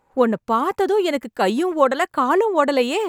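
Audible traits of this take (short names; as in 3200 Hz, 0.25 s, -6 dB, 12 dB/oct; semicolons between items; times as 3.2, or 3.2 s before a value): noise floor -73 dBFS; spectral tilt -2.5 dB/oct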